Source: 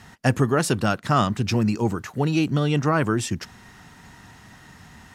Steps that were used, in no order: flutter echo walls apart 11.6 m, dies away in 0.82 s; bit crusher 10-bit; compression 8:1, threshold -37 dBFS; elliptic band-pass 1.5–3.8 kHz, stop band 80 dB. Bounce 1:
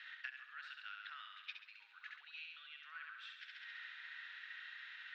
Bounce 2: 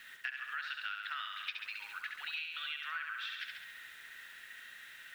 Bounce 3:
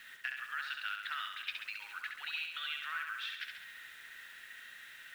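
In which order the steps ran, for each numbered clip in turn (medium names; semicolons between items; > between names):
flutter echo > compression > bit crusher > elliptic band-pass; elliptic band-pass > bit crusher > flutter echo > compression; elliptic band-pass > compression > bit crusher > flutter echo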